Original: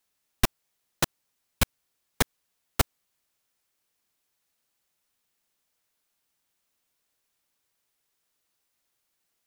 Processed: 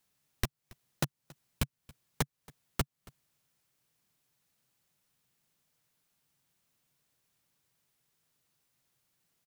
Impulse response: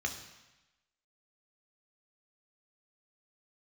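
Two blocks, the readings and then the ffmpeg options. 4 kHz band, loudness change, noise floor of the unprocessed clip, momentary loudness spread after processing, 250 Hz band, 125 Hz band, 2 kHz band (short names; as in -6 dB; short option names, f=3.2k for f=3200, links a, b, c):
-9.5 dB, -8.0 dB, -78 dBFS, 2 LU, -5.5 dB, -3.5 dB, -9.5 dB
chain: -filter_complex "[0:a]equalizer=f=140:w=1.3:g=14,acompressor=threshold=-31dB:ratio=4,asplit=2[a][b];[b]aecho=0:1:277:0.0668[c];[a][c]amix=inputs=2:normalize=0"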